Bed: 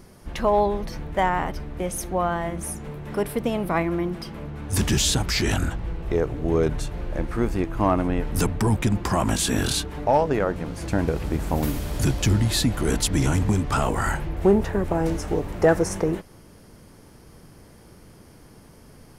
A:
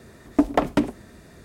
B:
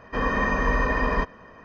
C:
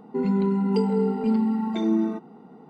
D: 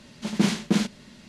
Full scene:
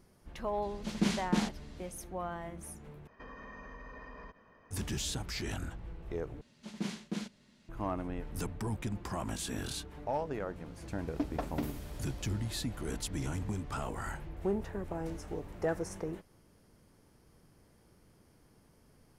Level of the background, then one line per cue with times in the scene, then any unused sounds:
bed -15 dB
0.62 add D -8 dB
3.07 replace with B -14 dB + compressor 5:1, threshold -32 dBFS
6.41 replace with D -15.5 dB
10.81 add A -15.5 dB + CVSD 32 kbps
not used: C

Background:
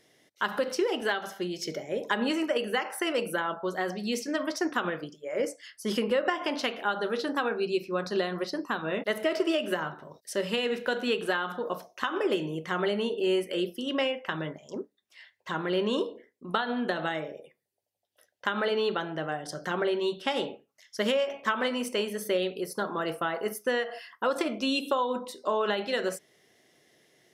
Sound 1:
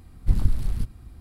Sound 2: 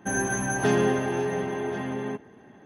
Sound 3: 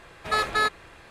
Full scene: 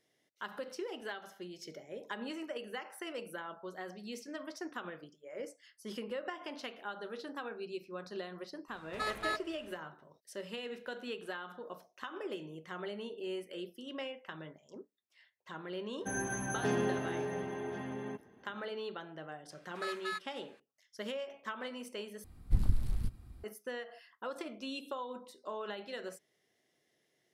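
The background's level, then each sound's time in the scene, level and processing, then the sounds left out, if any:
background -13.5 dB
8.68 add 3 -12.5 dB
16 add 2 -10 dB
19.5 add 3 -15.5 dB + inverse Chebyshev high-pass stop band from 310 Hz, stop band 60 dB
22.24 replace with 1 -8 dB

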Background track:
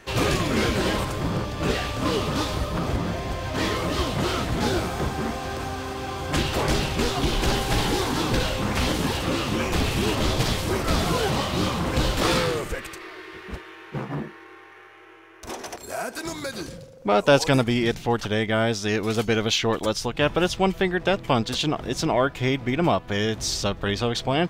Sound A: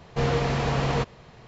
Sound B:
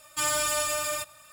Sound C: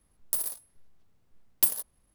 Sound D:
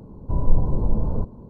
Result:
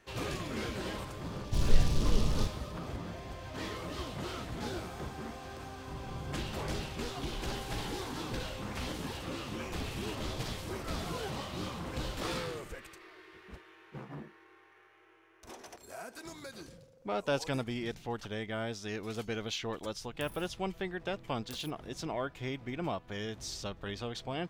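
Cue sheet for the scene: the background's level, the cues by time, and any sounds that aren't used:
background track -14.5 dB
1.23 add D -7 dB + noise-modulated delay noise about 4200 Hz, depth 0.17 ms
5.58 add D -17 dB + HPF 67 Hz
19.88 add C -7.5 dB + compressor 16:1, threshold -42 dBFS
not used: A, B

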